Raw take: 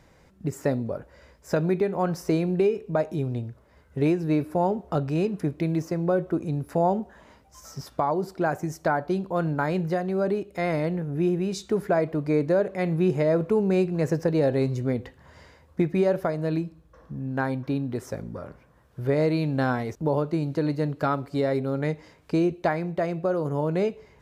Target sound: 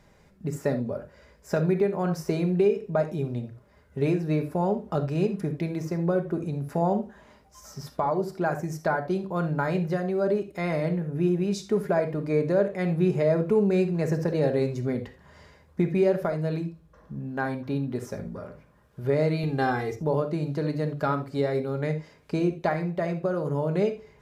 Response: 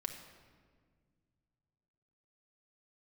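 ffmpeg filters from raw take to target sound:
-filter_complex "[0:a]asettb=1/sr,asplit=3[a][b][c];[a]atrim=end=19.434[d];[b]atrim=start=19.43:end=19.96,asetpts=PTS-STARTPTS,afade=t=in:d=0.004:c=qsin,afade=t=out:st=0.526:d=0.004:c=qsin,aecho=1:1:2.5:0.85,atrim=end_sample=23373[e];[c]atrim=start=19.956[f];[d][e]acrossfade=d=0.004:c1=hsin:c2=qsin[g];[g][f]acrossfade=d=0.004:c1=qsin:c2=hsin[h];[1:a]atrim=start_sample=2205,atrim=end_sample=3969[i];[h][i]afir=irnorm=-1:irlink=0"

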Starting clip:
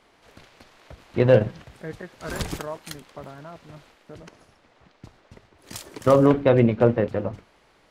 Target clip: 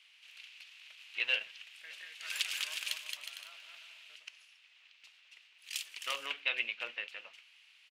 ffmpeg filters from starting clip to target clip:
-filter_complex "[0:a]highpass=f=2.7k:t=q:w=4.6,asplit=3[a][b][c];[a]afade=t=out:st=1.89:d=0.02[d];[b]aecho=1:1:220|363|456|516.4|555.6:0.631|0.398|0.251|0.158|0.1,afade=t=in:st=1.89:d=0.02,afade=t=out:st=4.15:d=0.02[e];[c]afade=t=in:st=4.15:d=0.02[f];[d][e][f]amix=inputs=3:normalize=0,volume=-4.5dB"

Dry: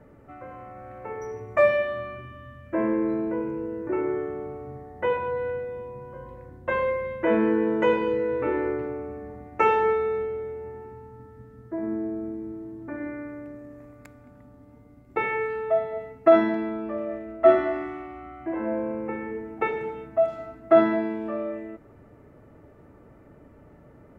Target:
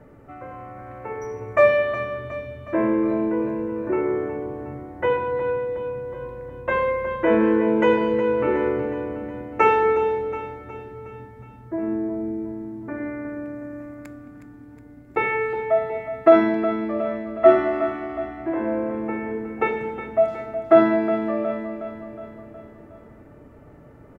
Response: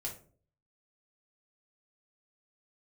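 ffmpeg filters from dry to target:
-filter_complex "[0:a]aecho=1:1:365|730|1095|1460|1825|2190:0.282|0.158|0.0884|0.0495|0.0277|0.0155,asplit=2[a][b];[1:a]atrim=start_sample=2205[c];[b][c]afir=irnorm=-1:irlink=0,volume=-14dB[d];[a][d]amix=inputs=2:normalize=0,volume=2.5dB"

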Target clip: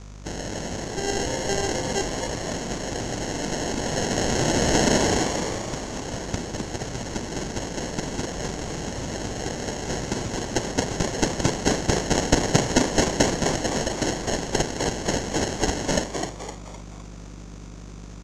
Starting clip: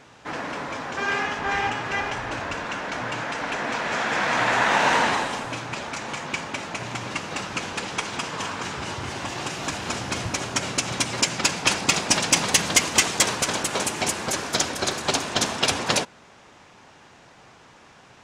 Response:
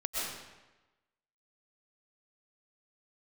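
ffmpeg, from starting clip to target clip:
-filter_complex "[0:a]aeval=exprs='val(0)+0.0126*(sin(2*PI*50*n/s)+sin(2*PI*2*50*n/s)/2+sin(2*PI*3*50*n/s)/3+sin(2*PI*4*50*n/s)/4+sin(2*PI*5*50*n/s)/5)':c=same,acrusher=samples=37:mix=1:aa=0.000001,lowpass=f=6.5k:t=q:w=4.6,asplit=2[a][b];[b]asplit=5[c][d][e][f][g];[c]adelay=256,afreqshift=120,volume=-6dB[h];[d]adelay=512,afreqshift=240,volume=-13.3dB[i];[e]adelay=768,afreqshift=360,volume=-20.7dB[j];[f]adelay=1024,afreqshift=480,volume=-28dB[k];[g]adelay=1280,afreqshift=600,volume=-35.3dB[l];[h][i][j][k][l]amix=inputs=5:normalize=0[m];[a][m]amix=inputs=2:normalize=0,volume=-1.5dB"

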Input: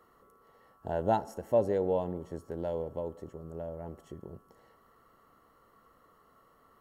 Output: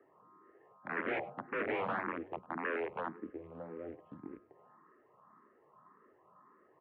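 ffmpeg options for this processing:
-filter_complex "[0:a]aemphasis=mode=reproduction:type=50kf,acrusher=bits=4:mode=log:mix=0:aa=0.000001,aeval=exprs='(mod(22.4*val(0)+1,2)-1)/22.4':c=same,asplit=2[a][b];[b]aecho=0:1:101:0.0891[c];[a][c]amix=inputs=2:normalize=0,highpass=f=250:t=q:w=0.5412,highpass=f=250:t=q:w=1.307,lowpass=f=2.3k:t=q:w=0.5176,lowpass=f=2.3k:t=q:w=0.7071,lowpass=f=2.3k:t=q:w=1.932,afreqshift=-76,asplit=2[d][e];[e]afreqshift=1.8[f];[d][f]amix=inputs=2:normalize=1,volume=2.5dB"

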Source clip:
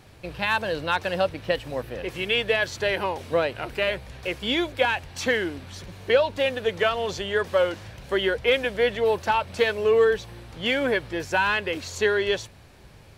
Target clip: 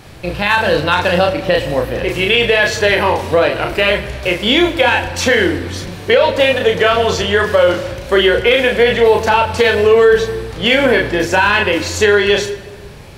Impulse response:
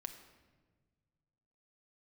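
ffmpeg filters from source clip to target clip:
-filter_complex "[0:a]asplit=2[a][b];[1:a]atrim=start_sample=2205,adelay=34[c];[b][c]afir=irnorm=-1:irlink=0,volume=0dB[d];[a][d]amix=inputs=2:normalize=0,alimiter=level_in=13dB:limit=-1dB:release=50:level=0:latency=1,volume=-1dB"

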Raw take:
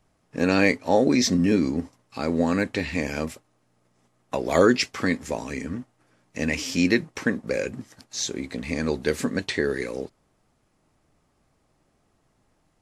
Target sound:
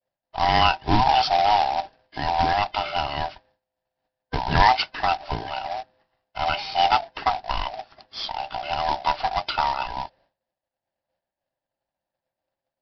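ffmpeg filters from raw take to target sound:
-af "afftfilt=real='real(if(lt(b,1008),b+24*(1-2*mod(floor(b/24),2)),b),0)':imag='imag(if(lt(b,1008),b+24*(1-2*mod(floor(b/24),2)),b),0)':win_size=2048:overlap=0.75,agate=range=-33dB:threshold=-53dB:ratio=3:detection=peak,aresample=11025,acrusher=bits=2:mode=log:mix=0:aa=0.000001,aresample=44100,volume=1dB"

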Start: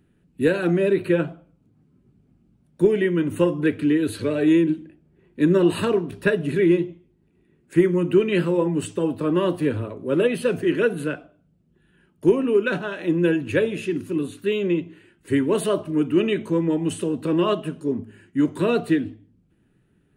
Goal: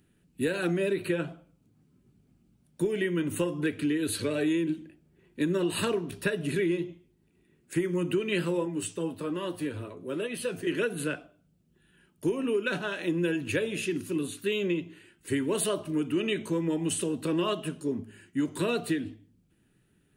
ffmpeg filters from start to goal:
-filter_complex "[0:a]highshelf=f=2.7k:g=11.5,acompressor=threshold=-19dB:ratio=6,asettb=1/sr,asplit=3[a][b][c];[a]atrim=end=8.654[d];[b]atrim=start=8.65:end=10.67,asetpts=PTS-STARTPTS,afade=t=in:d=0.004:c=qsin,afade=t=out:st=2.016:d=0.004:c=qsin,flanger=delay=8.7:depth=3.6:regen=55:speed=1.2:shape=triangular[e];[c]atrim=start=10.666[f];[d][e]acrossfade=d=0.004:c1=hsin:c2=qsin[g];[g][f]acrossfade=d=0.004:c1=qsin:c2=hsin,volume=-5dB"

